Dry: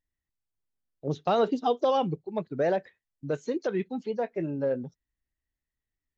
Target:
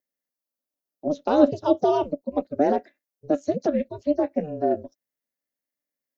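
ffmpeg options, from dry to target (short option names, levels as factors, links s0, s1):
-af "aexciter=amount=1.3:drive=8.1:freq=4700,highpass=f=420:t=q:w=5,aeval=exprs='val(0)*sin(2*PI*150*n/s)':c=same"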